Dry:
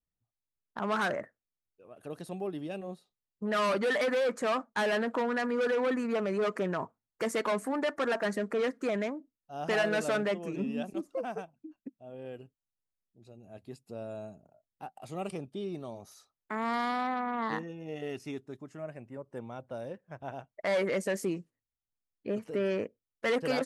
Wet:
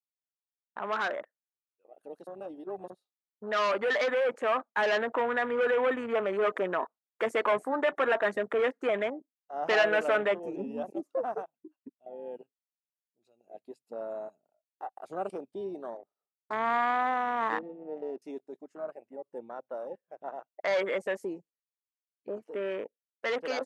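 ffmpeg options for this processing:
-filter_complex "[0:a]asettb=1/sr,asplit=3[s0][s1][s2];[s0]atrim=end=15.974[s3];[s1]atrim=start=15.97:end=18.22,asetpts=PTS-STARTPTS,afade=t=in:d=0.004:c=qsin,afade=t=out:st=2.246:d=0.004:c=qsin,adynamicsmooth=sensitivity=6.5:basefreq=540[s4];[s2]atrim=start=18.216[s5];[s3][s4]acrossfade=d=0.004:c1=hsin:c2=qsin[s6];[s6][s5]acrossfade=d=0.004:c1=qsin:c2=hsin,asplit=3[s7][s8][s9];[s7]atrim=end=2.272[s10];[s8]atrim=start=2.268:end=2.902,asetpts=PTS-STARTPTS,areverse[s11];[s9]atrim=start=2.898[s12];[s10][s11]acrossfade=d=0.004:c1=hsin:c2=hsin[s13];[s13][s12]acrossfade=d=0.004:c1=hsin:c2=hsin,highpass=410,afwtdn=0.00708,dynaudnorm=f=690:g=13:m=1.78"

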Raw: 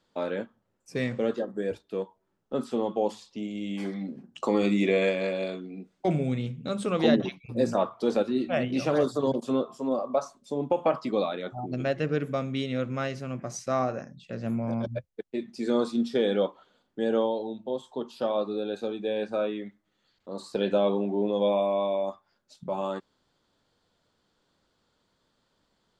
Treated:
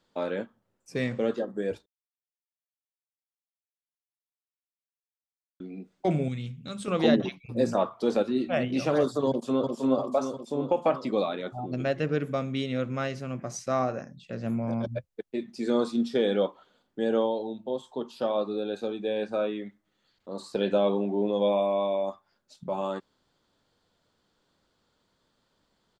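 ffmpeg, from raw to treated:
-filter_complex "[0:a]asettb=1/sr,asplit=3[s0][s1][s2];[s0]atrim=end=6.284[s3];[s1]atrim=start=6.28:end=6.88,asetpts=PTS-STARTPTS,afade=t=in:d=0.004:c=qsin,afade=t=out:st=0.596:d=0.004:c=qsin,equalizer=f=520:t=o:w=2.6:g=-11.5[s4];[s2]atrim=start=6.876[s5];[s3][s4]acrossfade=d=0.004:c1=hsin:c2=qsin[s6];[s6][s5]acrossfade=d=0.004:c1=qsin:c2=hsin,asplit=2[s7][s8];[s8]afade=t=in:st=9.28:d=0.01,afade=t=out:st=9.73:d=0.01,aecho=0:1:350|700|1050|1400|1750|2100|2450|2800|3150:0.707946|0.424767|0.25486|0.152916|0.0917498|0.0550499|0.0330299|0.019818|0.0118908[s9];[s7][s9]amix=inputs=2:normalize=0,asplit=3[s10][s11][s12];[s10]atrim=end=1.86,asetpts=PTS-STARTPTS,afade=t=out:st=1.856:d=0.004:c=hsin[s13];[s11]atrim=start=1.86:end=5.6,asetpts=PTS-STARTPTS,volume=0[s14];[s12]atrim=start=5.6,asetpts=PTS-STARTPTS,afade=t=in:d=0.004:c=hsin[s15];[s13][s14][s15]concat=n=3:v=0:a=1"

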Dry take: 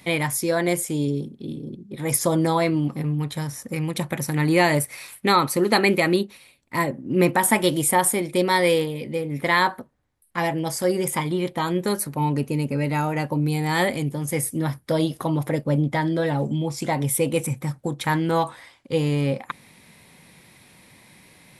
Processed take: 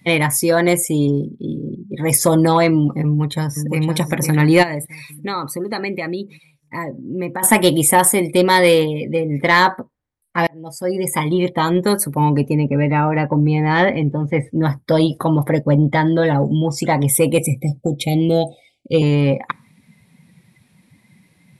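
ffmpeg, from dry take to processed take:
-filter_complex "[0:a]asplit=2[s0][s1];[s1]afade=t=in:st=3.05:d=0.01,afade=t=out:st=3.83:d=0.01,aecho=0:1:510|1020|1530|2040|2550|3060|3570:0.446684|0.245676|0.135122|0.074317|0.0408743|0.0224809|0.0123645[s2];[s0][s2]amix=inputs=2:normalize=0,asplit=3[s3][s4][s5];[s3]afade=t=out:st=4.62:d=0.02[s6];[s4]acompressor=threshold=0.0126:ratio=2:attack=3.2:release=140:knee=1:detection=peak,afade=t=in:st=4.62:d=0.02,afade=t=out:st=7.42:d=0.02[s7];[s5]afade=t=in:st=7.42:d=0.02[s8];[s6][s7][s8]amix=inputs=3:normalize=0,asplit=3[s9][s10][s11];[s9]afade=t=out:st=12.53:d=0.02[s12];[s10]lowpass=2900,afade=t=in:st=12.53:d=0.02,afade=t=out:st=14.61:d=0.02[s13];[s11]afade=t=in:st=14.61:d=0.02[s14];[s12][s13][s14]amix=inputs=3:normalize=0,asettb=1/sr,asplit=3[s15][s16][s17];[s15]atrim=end=17.384[s18];[s16]atrim=start=17.38:end=19.02,asetpts=PTS-STARTPTS,afade=t=in:d=0.004:c=qsin,afade=t=out:st=1.636:d=0.004:c=qsin,asuperstop=centerf=1300:order=20:qfactor=0.93[s19];[s17]atrim=start=19.016[s20];[s18][s19]acrossfade=d=0.004:c1=hsin:c2=qsin[s21];[s21][s20]acrossfade=d=0.004:c1=qsin:c2=hsin,asplit=2[s22][s23];[s22]atrim=end=10.47,asetpts=PTS-STARTPTS,afade=t=out:st=10.466:d=0.004:c=hsin[s24];[s23]atrim=start=10.47,asetpts=PTS-STARTPTS,afade=t=in:d=0.9[s25];[s24][s25]concat=n=2:v=0:a=1,afftdn=nr=17:nf=-42,acontrast=70,volume=1.12"

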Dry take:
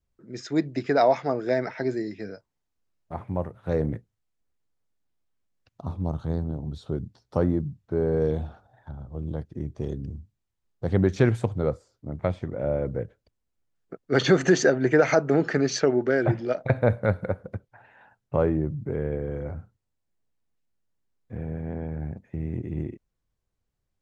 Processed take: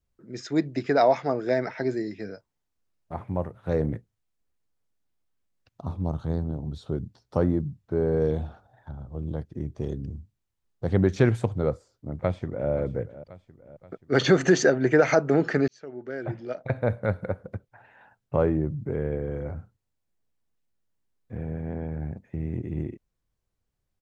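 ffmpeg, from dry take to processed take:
-filter_complex "[0:a]asplit=2[s0][s1];[s1]afade=t=in:st=11.69:d=0.01,afade=t=out:st=12.7:d=0.01,aecho=0:1:530|1060|1590|2120|2650:0.16788|0.0923342|0.0507838|0.0279311|0.0153621[s2];[s0][s2]amix=inputs=2:normalize=0,asplit=2[s3][s4];[s3]atrim=end=15.68,asetpts=PTS-STARTPTS,afade=t=out:st=15.676:d=0.004:c=hsin[s5];[s4]atrim=start=15.68,asetpts=PTS-STARTPTS,afade=t=in:d=2.68:c=qsin[s6];[s5][s6]concat=n=2:v=0:a=1"

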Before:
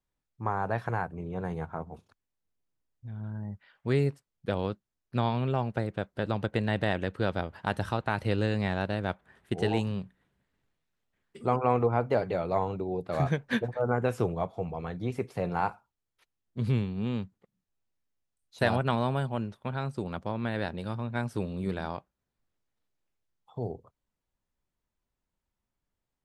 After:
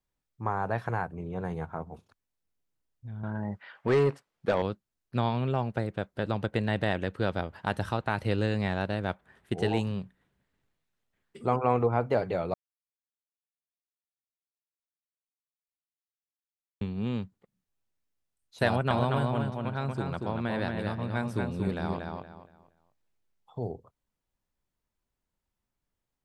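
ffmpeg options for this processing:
-filter_complex "[0:a]asettb=1/sr,asplit=3[s0][s1][s2];[s0]atrim=end=3.234[s3];[s1]atrim=start=3.23:end=4.62,asetpts=PTS-STARTPTS,afade=t=in:d=0.004:c=qsin,afade=t=out:st=1.386:d=0.004:c=qsin,asplit=2[s4][s5];[s5]highpass=f=720:p=1,volume=12.6,asoftclip=type=tanh:threshold=0.188[s6];[s4][s6]amix=inputs=2:normalize=0,lowpass=f=1500:p=1,volume=0.501[s7];[s2]atrim=start=4.616[s8];[s3][s7]acrossfade=d=0.004:c1=hsin:c2=qsin[s9];[s9][s8]acrossfade=d=0.004:c1=qsin:c2=hsin,asettb=1/sr,asplit=3[s10][s11][s12];[s10]atrim=end=18.674[s13];[s11]atrim=start=18.67:end=23.63,asetpts=PTS-STARTPTS,afade=t=in:d=0.004:c=qsin,afade=t=out:st=4.956:d=0.004:c=qsin,asplit=2[s14][s15];[s15]adelay=234,lowpass=f=4500:p=1,volume=0.668,asplit=2[s16][s17];[s17]adelay=234,lowpass=f=4500:p=1,volume=0.29,asplit=2[s18][s19];[s19]adelay=234,lowpass=f=4500:p=1,volume=0.29,asplit=2[s20][s21];[s21]adelay=234,lowpass=f=4500:p=1,volume=0.29[s22];[s14][s16][s18][s20][s22]amix=inputs=5:normalize=0,atrim=end_sample=218736[s23];[s12]atrim=start=23.626[s24];[s13][s23]acrossfade=d=0.004:c1=hsin:c2=qsin[s25];[s25][s24]acrossfade=d=0.004:c1=qsin:c2=hsin,asplit=3[s26][s27][s28];[s26]atrim=end=12.54,asetpts=PTS-STARTPTS,afade=t=out:st=12.536:d=0.004:c=hsin[s29];[s27]atrim=start=12.54:end=16.81,asetpts=PTS-STARTPTS,volume=0[s30];[s28]atrim=start=16.81,asetpts=PTS-STARTPTS,afade=t=in:d=0.004:c=hsin[s31];[s29][s30][s31]concat=n=3:v=0:a=1"

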